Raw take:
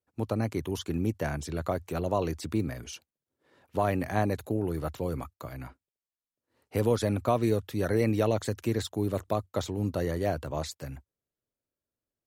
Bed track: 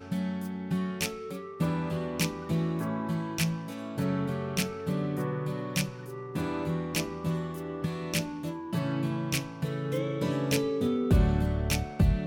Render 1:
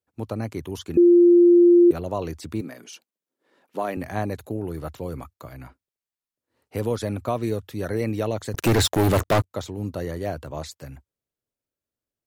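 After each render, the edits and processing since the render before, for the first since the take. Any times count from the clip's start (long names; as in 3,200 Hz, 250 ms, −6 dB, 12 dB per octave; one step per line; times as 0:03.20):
0:00.97–0:01.91: beep over 348 Hz −10 dBFS
0:02.61–0:03.97: high-pass filter 190 Hz 24 dB per octave
0:08.54–0:09.51: leveller curve on the samples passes 5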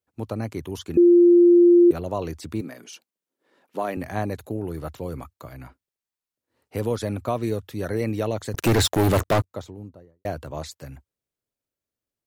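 0:09.19–0:10.25: fade out and dull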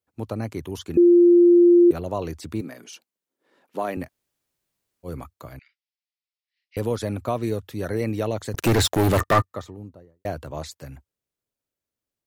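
0:04.06–0:05.06: fill with room tone, crossfade 0.06 s
0:05.59–0:06.77: elliptic band-pass filter 2,000–5,300 Hz, stop band 50 dB
0:09.17–0:09.77: hollow resonant body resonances 1,200/1,800 Hz, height 14 dB, ringing for 35 ms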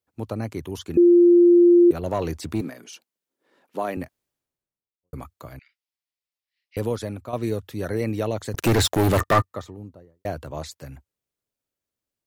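0:02.03–0:02.70: leveller curve on the samples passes 1
0:03.95–0:05.13: fade out and dull
0:06.85–0:07.33: fade out, to −10.5 dB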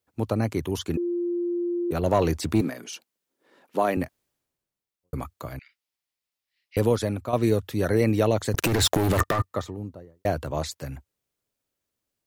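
compressor whose output falls as the input rises −22 dBFS, ratio −1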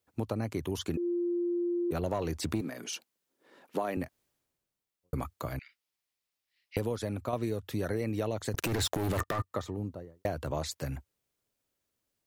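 downward compressor, threshold −29 dBFS, peak gain reduction 12.5 dB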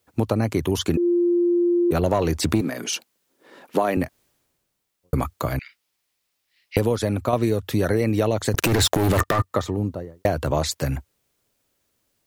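level +11.5 dB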